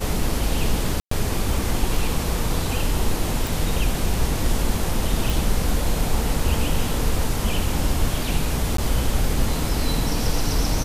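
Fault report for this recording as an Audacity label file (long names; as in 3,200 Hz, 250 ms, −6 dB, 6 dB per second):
1.000000	1.110000	drop-out 114 ms
3.470000	3.470000	click
5.300000	5.300000	click
8.770000	8.780000	drop-out 13 ms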